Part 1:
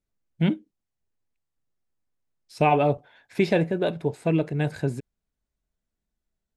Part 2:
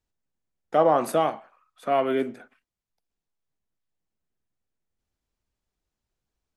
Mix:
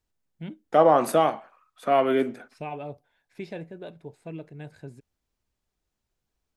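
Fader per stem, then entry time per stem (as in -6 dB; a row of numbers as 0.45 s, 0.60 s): -15.5 dB, +2.0 dB; 0.00 s, 0.00 s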